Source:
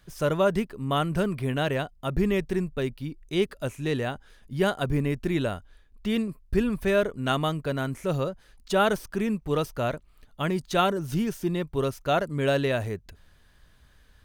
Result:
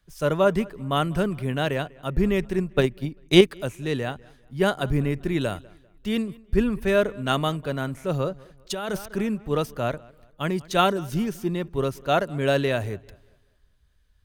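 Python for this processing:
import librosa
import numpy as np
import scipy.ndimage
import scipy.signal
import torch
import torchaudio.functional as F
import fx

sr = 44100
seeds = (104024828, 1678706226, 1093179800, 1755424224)

p1 = x + fx.echo_filtered(x, sr, ms=197, feedback_pct=49, hz=4400.0, wet_db=-21.5, dry=0)
p2 = fx.transient(p1, sr, attack_db=11, sustain_db=-2, at=(2.58, 3.41))
p3 = fx.high_shelf(p2, sr, hz=3700.0, db=5.5, at=(5.41, 6.09))
p4 = fx.over_compress(p3, sr, threshold_db=-26.0, ratio=-1.0, at=(8.19, 9.23), fade=0.02)
p5 = fx.band_widen(p4, sr, depth_pct=40)
y = p5 * librosa.db_to_amplitude(1.5)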